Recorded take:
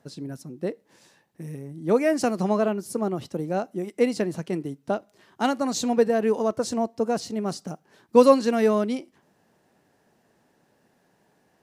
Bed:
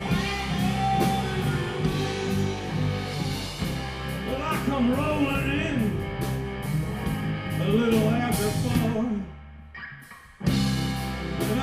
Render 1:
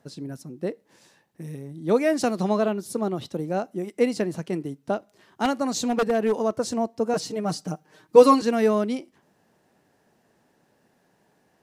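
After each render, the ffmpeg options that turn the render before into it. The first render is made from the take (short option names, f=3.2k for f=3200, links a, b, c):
-filter_complex "[0:a]asettb=1/sr,asplit=3[a][b][c];[a]atrim=end=1.444[d];[b]atrim=start=1.44:end=3.38,asetpts=PTS-STARTPTS,afade=t=in:d=0.004:c=qsin,afade=t=out:st=1.936:d=0.004:c=qsin,equalizer=f=3.7k:w=4.2:g=8.5[e];[c]atrim=start=3.376[f];[d][e]acrossfade=d=0.004:c1=hsin:c2=qsin[g];[g][f]acrossfade=d=0.004:c1=qsin:c2=hsin,asettb=1/sr,asplit=3[h][i][j];[h]atrim=end=5.454[k];[i]atrim=start=5.45:end=6.41,asetpts=PTS-STARTPTS,afade=t=in:d=0.004:c=qsin,afade=t=out:st=0.956:d=0.004:c=qsin,aeval=exprs='0.168*(abs(mod(val(0)/0.168+3,4)-2)-1)':c=same[l];[j]atrim=start=6.406[m];[k][l]acrossfade=d=0.004:c1=hsin:c2=qsin[n];[n][m]acrossfade=d=0.004:c1=qsin:c2=hsin,asettb=1/sr,asplit=3[o][p][q];[o]atrim=end=7.134[r];[p]atrim=start=7.13:end=8.42,asetpts=PTS-STARTPTS,afade=t=in:d=0.004:c=qsin,afade=t=out:st=1.286:d=0.004:c=qsin,aecho=1:1:6.5:0.88,atrim=end_sample=56889[s];[q]atrim=start=8.416[t];[r][s]acrossfade=d=0.004:c1=hsin:c2=qsin[u];[u][t]acrossfade=d=0.004:c1=qsin:c2=hsin"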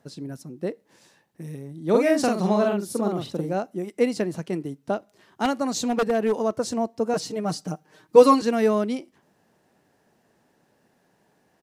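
-filter_complex "[0:a]asplit=3[a][b][c];[a]afade=t=out:st=1.93:d=0.02[d];[b]asplit=2[e][f];[f]adelay=44,volume=-3dB[g];[e][g]amix=inputs=2:normalize=0,afade=t=in:st=1.93:d=0.02,afade=t=out:st=3.53:d=0.02[h];[c]afade=t=in:st=3.53:d=0.02[i];[d][h][i]amix=inputs=3:normalize=0"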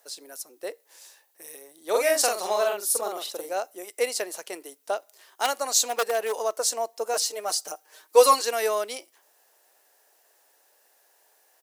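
-af "highpass=f=480:w=0.5412,highpass=f=480:w=1.3066,aemphasis=mode=production:type=75fm"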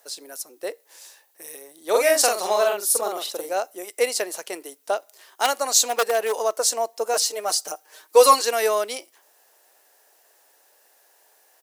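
-af "volume=4dB,alimiter=limit=-3dB:level=0:latency=1"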